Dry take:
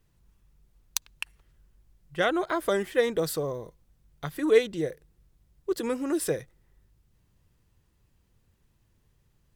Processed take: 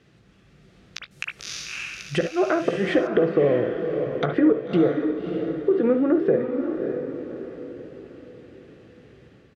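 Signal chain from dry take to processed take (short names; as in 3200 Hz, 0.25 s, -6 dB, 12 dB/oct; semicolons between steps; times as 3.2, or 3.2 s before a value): HPF 170 Hz 12 dB/oct; flipped gate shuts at -14 dBFS, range -28 dB; compressor 10:1, threshold -38 dBFS, peak gain reduction 18 dB; treble ducked by the level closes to 1200 Hz, closed at -39.5 dBFS; bell 970 Hz -14.5 dB 0.3 oct; doubler 16 ms -12 dB; diffused feedback echo 0.6 s, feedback 43%, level -6.5 dB; AGC gain up to 4.5 dB; LPF 3800 Hz 12 dB/oct, from 1.11 s 11000 Hz, from 3.07 s 2700 Hz; reverb, pre-delay 48 ms, DRR 9.5 dB; maximiser +26 dB; gain -8.5 dB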